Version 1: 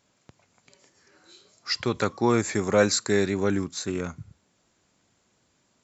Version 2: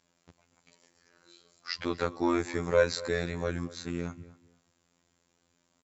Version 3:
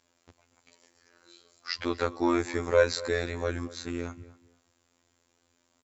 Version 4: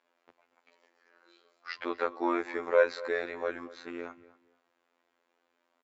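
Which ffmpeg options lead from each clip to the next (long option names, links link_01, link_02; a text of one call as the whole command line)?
ffmpeg -i in.wav -filter_complex "[0:a]afftfilt=real='hypot(re,im)*cos(PI*b)':imag='0':win_size=2048:overlap=0.75,acrossover=split=5400[link_01][link_02];[link_02]acompressor=threshold=-54dB:ratio=4:attack=1:release=60[link_03];[link_01][link_03]amix=inputs=2:normalize=0,asplit=2[link_04][link_05];[link_05]adelay=240,lowpass=frequency=2700:poles=1,volume=-18dB,asplit=2[link_06][link_07];[link_07]adelay=240,lowpass=frequency=2700:poles=1,volume=0.24[link_08];[link_04][link_06][link_08]amix=inputs=3:normalize=0,volume=-1.5dB" out.wav
ffmpeg -i in.wav -af "equalizer=frequency=170:width=6.8:gain=-13,volume=2dB" out.wav
ffmpeg -i in.wav -af "highpass=410,lowpass=2400" out.wav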